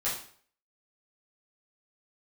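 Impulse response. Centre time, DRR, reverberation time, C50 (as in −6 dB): 37 ms, −10.0 dB, 0.50 s, 5.0 dB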